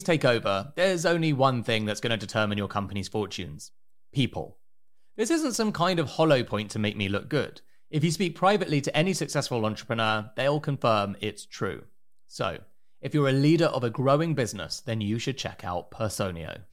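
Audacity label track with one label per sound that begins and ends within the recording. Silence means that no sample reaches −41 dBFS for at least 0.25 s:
4.140000	4.510000	sound
5.180000	7.580000	sound
7.920000	11.830000	sound
12.320000	12.620000	sound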